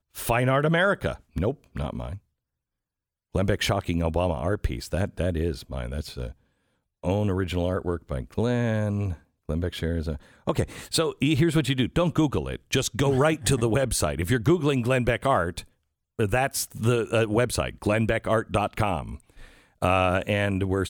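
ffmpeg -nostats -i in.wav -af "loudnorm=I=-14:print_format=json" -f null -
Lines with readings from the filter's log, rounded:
"input_i" : "-25.5",
"input_tp" : "-10.1",
"input_lra" : "5.5",
"input_thresh" : "-36.0",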